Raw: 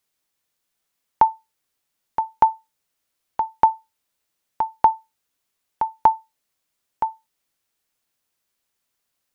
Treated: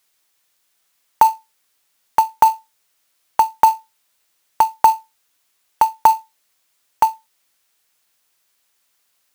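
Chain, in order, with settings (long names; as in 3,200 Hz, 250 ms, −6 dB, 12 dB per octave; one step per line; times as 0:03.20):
low-shelf EQ 480 Hz −10.5 dB
in parallel at −3 dB: compressor whose output falls as the input rises −21 dBFS, ratio −0.5
on the sum: floating-point word with a short mantissa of 2 bits
level +5 dB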